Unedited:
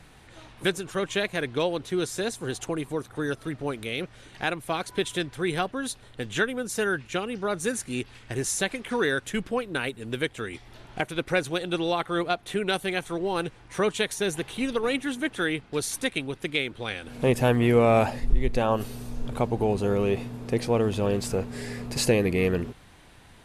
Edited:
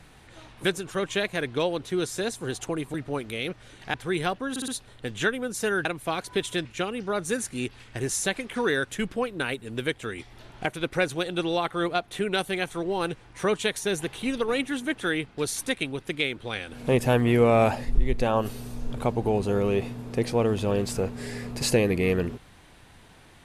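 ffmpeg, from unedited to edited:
-filter_complex "[0:a]asplit=8[a][b][c][d][e][f][g][h];[a]atrim=end=2.942[i];[b]atrim=start=3.468:end=4.472[j];[c]atrim=start=5.268:end=5.892[k];[d]atrim=start=5.828:end=5.892[l];[e]atrim=start=5.828:end=5.892[m];[f]atrim=start=5.828:end=7.002[n];[g]atrim=start=4.468:end=5.272[o];[h]atrim=start=6.998[p];[i][j]acrossfade=d=0.004:c1=hsin:c2=hsin[q];[q][k]acrossfade=d=0.004:c1=hsin:c2=hsin[r];[r][l]acrossfade=d=0.004:c1=hsin:c2=hsin[s];[s][m]acrossfade=d=0.004:c1=hsin:c2=hsin[t];[t][n]acrossfade=d=0.004:c1=hsin:c2=hsin[u];[u][o]acrossfade=d=0.004:c1=hsin:c2=hsin[v];[v][p]acrossfade=d=0.004:c1=hsin:c2=hsin"

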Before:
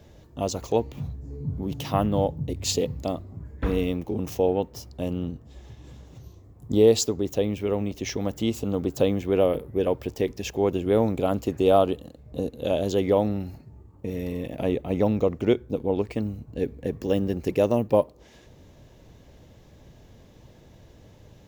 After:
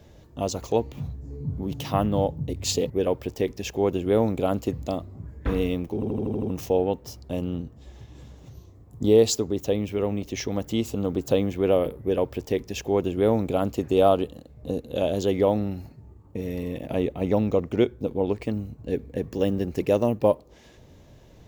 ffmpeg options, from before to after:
-filter_complex "[0:a]asplit=9[a][b][c][d][e][f][g][h][i];[a]atrim=end=2.902[j];[b]atrim=start=9.698:end=11.532[k];[c]atrim=start=2.898:end=4.202[l];[d]atrim=start=4.118:end=4.202[m];[e]atrim=start=4.118:end=4.202[n];[f]atrim=start=4.118:end=4.202[o];[g]atrim=start=4.118:end=4.202[p];[h]atrim=start=4.118:end=4.202[q];[i]atrim=start=4.118[r];[j][k]acrossfade=d=0.004:c1=hsin:c2=hsin[s];[s][l]acrossfade=d=0.004:c1=hsin:c2=hsin[t];[t][m]acrossfade=d=0.004:c1=hsin:c2=hsin[u];[u][n]acrossfade=d=0.004:c1=hsin:c2=hsin[v];[v][o]acrossfade=d=0.004:c1=hsin:c2=hsin[w];[w][p]acrossfade=d=0.004:c1=hsin:c2=hsin[x];[x][q]acrossfade=d=0.004:c1=hsin:c2=hsin[y];[y][r]acrossfade=d=0.004:c1=hsin:c2=hsin"

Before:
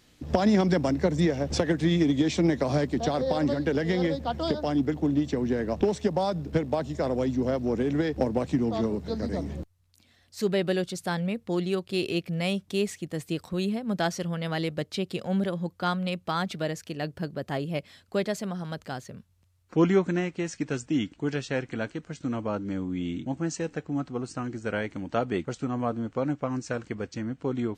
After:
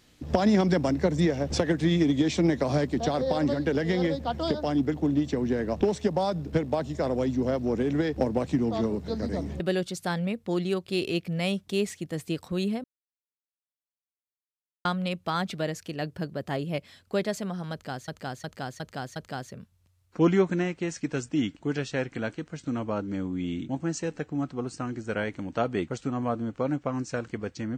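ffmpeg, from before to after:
-filter_complex "[0:a]asplit=8[a][b][c][d][e][f][g][h];[a]atrim=end=9.602[i];[b]atrim=start=10.608:end=13.85,asetpts=PTS-STARTPTS,afade=t=out:st=3.238:d=0.004:c=hsin[j];[c]atrim=start=13.85:end=15.86,asetpts=PTS-STARTPTS,volume=0[k];[d]atrim=start=15.86:end=19.092,asetpts=PTS-STARTPTS,afade=t=in:d=0.004:c=hsin[l];[e]atrim=start=18.728:end=19.092[m];[f]atrim=start=18.728:end=19.092[n];[g]atrim=start=18.728:end=19.092[o];[h]atrim=start=18.728[p];[j][k][l]concat=n=3:v=0:a=1[q];[i][q]acrossfade=d=0.004:c1=hsin:c2=hsin[r];[r][m]acrossfade=d=0.004:c1=hsin:c2=hsin[s];[s][n]acrossfade=d=0.004:c1=hsin:c2=hsin[t];[t][o]acrossfade=d=0.004:c1=hsin:c2=hsin[u];[u][p]acrossfade=d=0.004:c1=hsin:c2=hsin"

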